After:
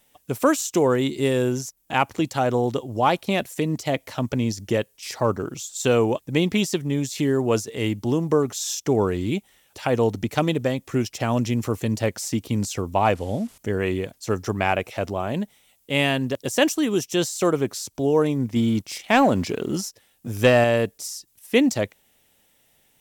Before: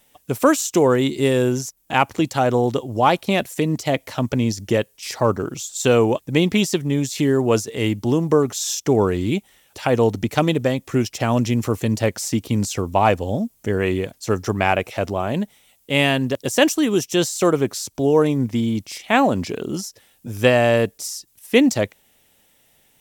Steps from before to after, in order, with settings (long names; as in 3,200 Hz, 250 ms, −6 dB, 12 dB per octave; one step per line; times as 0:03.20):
0:13.15–0:13.58: linear delta modulator 64 kbit/s, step −39 dBFS
0:18.56–0:20.64: leveller curve on the samples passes 1
level −3.5 dB